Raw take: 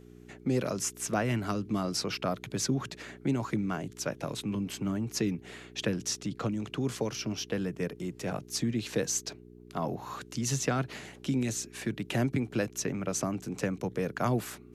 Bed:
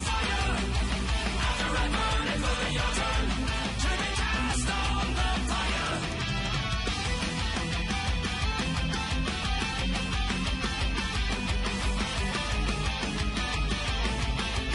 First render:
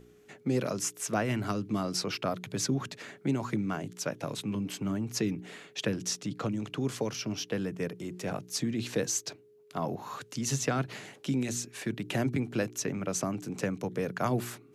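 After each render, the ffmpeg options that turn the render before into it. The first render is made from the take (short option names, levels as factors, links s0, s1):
-af "bandreject=f=60:t=h:w=4,bandreject=f=120:t=h:w=4,bandreject=f=180:t=h:w=4,bandreject=f=240:t=h:w=4,bandreject=f=300:t=h:w=4,bandreject=f=360:t=h:w=4"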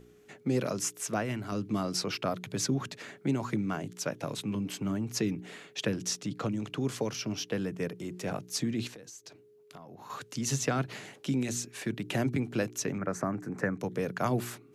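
-filter_complex "[0:a]asettb=1/sr,asplit=3[s0][s1][s2];[s0]atrim=end=8.874[s3];[s1]atrim=start=8.87:end=10.1,asetpts=PTS-STARTPTS,afade=t=in:d=0.004:c=qsin,afade=t=out:st=1.226:d=0.004:c=qsin,acompressor=threshold=0.00631:ratio=16:attack=3.2:release=140:knee=1:detection=peak[s4];[s2]atrim=start=10.096[s5];[s3][s4]acrossfade=d=0.004:c1=hsin:c2=qsin[s6];[s6][s5]acrossfade=d=0.004:c1=qsin:c2=hsin,asettb=1/sr,asplit=3[s7][s8][s9];[s7]atrim=end=12.984[s10];[s8]atrim=start=12.98:end=13.8,asetpts=PTS-STARTPTS,afade=t=in:d=0.004:c=qsin,afade=t=out:st=0.816:d=0.004:c=qsin,highshelf=f=2300:t=q:w=3:g=-9.5[s11];[s9]atrim=start=13.796[s12];[s10][s11]acrossfade=d=0.004:c1=hsin:c2=qsin[s13];[s13][s12]acrossfade=d=0.004:c1=qsin:c2=hsin,asplit=2[s14][s15];[s14]atrim=end=1.52,asetpts=PTS-STARTPTS,afade=t=out:st=0.96:d=0.56:silence=0.473151[s16];[s15]atrim=start=1.52,asetpts=PTS-STARTPTS,afade=t=in:d=0.004:c=hsin:silence=0.473151[s17];[s16][s17]concat=n=2:v=0:a=1"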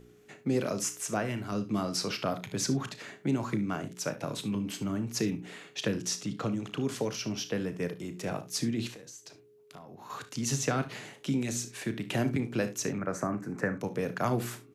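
-filter_complex "[0:a]asplit=2[s0][s1];[s1]adelay=34,volume=0.251[s2];[s0][s2]amix=inputs=2:normalize=0,aecho=1:1:59|73:0.15|0.133"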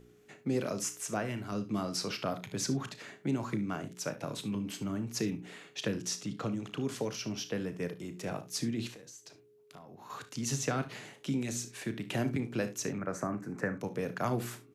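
-af "volume=0.708"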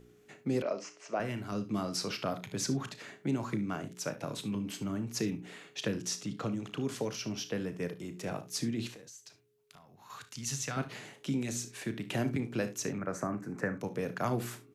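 -filter_complex "[0:a]asettb=1/sr,asplit=3[s0][s1][s2];[s0]atrim=end=0.624[s3];[s1]atrim=start=0.62:end=1.2,asetpts=PTS-STARTPTS,afade=t=in:d=0.004:c=qsin,afade=t=out:st=0.576:d=0.004:c=qsin,highpass=340,equalizer=f=610:t=q:w=4:g=6,equalizer=f=1600:t=q:w=4:g=-4,equalizer=f=3600:t=q:w=4:g=-10,lowpass=f=4600:w=0.5412,lowpass=f=4600:w=1.3066[s4];[s2]atrim=start=1.196[s5];[s3][s4]acrossfade=d=0.004:c1=hsin:c2=qsin[s6];[s6][s5]acrossfade=d=0.004:c1=qsin:c2=hsin,asettb=1/sr,asplit=3[s7][s8][s9];[s7]atrim=end=9.084[s10];[s8]atrim=start=9.08:end=10.77,asetpts=PTS-STARTPTS,afade=t=in:d=0.004:c=qsin,afade=t=out:st=1.686:d=0.004:c=qsin,equalizer=f=370:w=0.53:g=-11.5[s11];[s9]atrim=start=10.766[s12];[s10][s11]acrossfade=d=0.004:c1=hsin:c2=qsin[s13];[s13][s12]acrossfade=d=0.004:c1=qsin:c2=hsin"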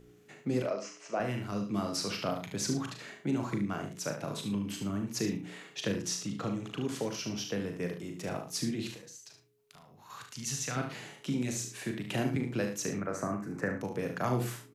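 -filter_complex "[0:a]asplit=2[s0][s1];[s1]adelay=40,volume=0.422[s2];[s0][s2]amix=inputs=2:normalize=0,aecho=1:1:73:0.266"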